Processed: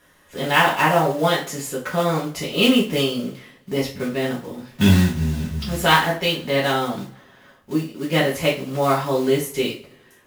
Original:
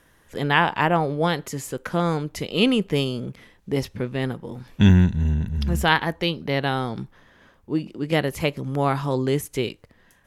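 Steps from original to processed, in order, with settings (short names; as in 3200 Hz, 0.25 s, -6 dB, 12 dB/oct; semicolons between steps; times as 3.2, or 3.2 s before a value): block floating point 5-bit; low shelf 110 Hz -8 dB; two-slope reverb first 0.34 s, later 1.6 s, from -27 dB, DRR -6 dB; gain -2.5 dB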